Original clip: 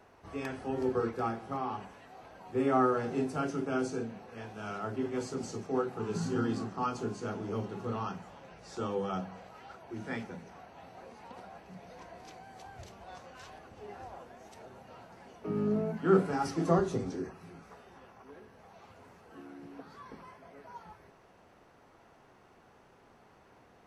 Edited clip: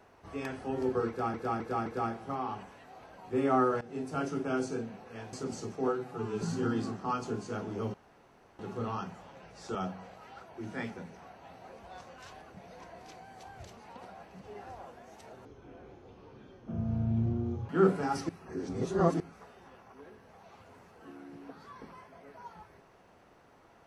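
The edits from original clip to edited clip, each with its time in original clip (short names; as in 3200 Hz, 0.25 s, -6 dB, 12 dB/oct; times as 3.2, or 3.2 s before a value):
1.08–1.34 loop, 4 plays
3.03–3.43 fade in, from -18 dB
4.55–5.24 cut
5.79–6.15 stretch 1.5×
7.67 insert room tone 0.65 s
8.83–9.08 cut
11.12–11.76 swap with 12.96–13.74
14.78–15.99 speed 54%
16.59–17.5 reverse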